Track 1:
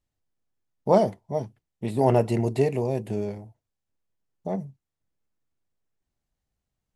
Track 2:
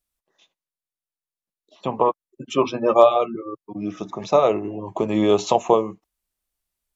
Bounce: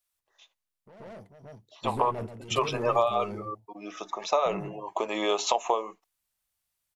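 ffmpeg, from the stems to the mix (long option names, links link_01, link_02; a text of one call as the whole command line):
ffmpeg -i stem1.wav -i stem2.wav -filter_complex "[0:a]alimiter=limit=-17dB:level=0:latency=1:release=27,asoftclip=type=tanh:threshold=-28dB,volume=-1dB,asplit=2[link_01][link_02];[link_02]volume=-12.5dB[link_03];[1:a]highpass=700,volume=1.5dB,asplit=2[link_04][link_05];[link_05]apad=whole_len=306619[link_06];[link_01][link_06]sidechaingate=range=-20dB:threshold=-41dB:ratio=16:detection=peak[link_07];[link_03]aecho=0:1:132:1[link_08];[link_07][link_04][link_08]amix=inputs=3:normalize=0,acompressor=threshold=-21dB:ratio=5" out.wav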